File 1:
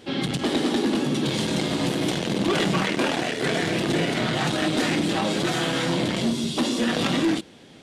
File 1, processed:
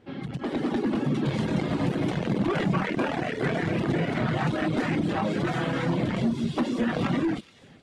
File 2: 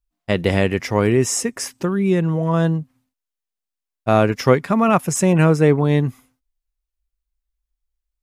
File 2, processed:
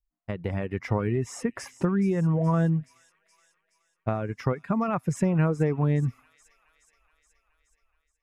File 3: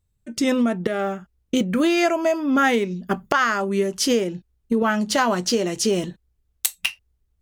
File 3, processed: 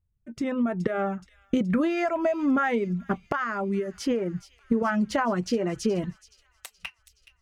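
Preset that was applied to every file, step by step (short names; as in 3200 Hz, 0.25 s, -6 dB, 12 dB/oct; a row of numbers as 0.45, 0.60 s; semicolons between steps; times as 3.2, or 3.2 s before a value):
high shelf 12000 Hz -4 dB; compressor 5:1, threshold -21 dBFS; reverb removal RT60 0.6 s; thin delay 0.423 s, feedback 66%, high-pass 3200 Hz, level -14 dB; AGC gain up to 10 dB; EQ curve 120 Hz 0 dB, 340 Hz -6 dB, 1200 Hz -5 dB, 2200 Hz -8 dB, 3400 Hz -16 dB, 12000 Hz -20 dB; match loudness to -27 LUFS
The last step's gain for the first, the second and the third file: -4.0, -4.5, -3.0 dB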